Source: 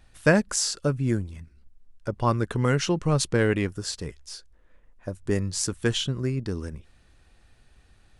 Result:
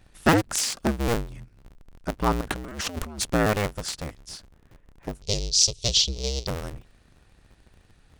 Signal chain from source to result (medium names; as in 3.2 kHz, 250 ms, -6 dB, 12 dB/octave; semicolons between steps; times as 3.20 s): cycle switcher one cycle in 2, inverted; 2.41–3.21 s: compressor with a negative ratio -34 dBFS, ratio -1; 5.22–6.47 s: FFT filter 120 Hz 0 dB, 270 Hz -16 dB, 420 Hz 0 dB, 1.6 kHz -26 dB, 2.4 kHz -3 dB, 4 kHz +12 dB, 5.8 kHz +14 dB, 11 kHz -14 dB